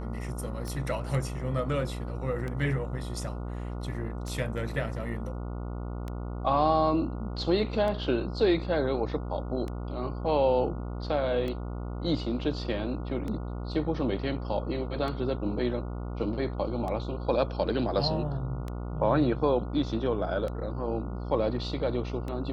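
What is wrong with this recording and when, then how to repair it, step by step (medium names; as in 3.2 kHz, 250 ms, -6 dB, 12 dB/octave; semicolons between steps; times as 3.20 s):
buzz 60 Hz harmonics 24 -35 dBFS
tick 33 1/3 rpm -23 dBFS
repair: de-click; de-hum 60 Hz, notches 24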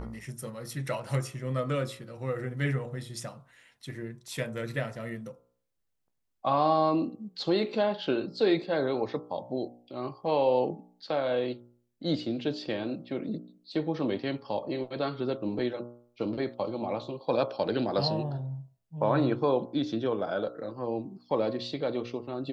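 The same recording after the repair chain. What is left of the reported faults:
nothing left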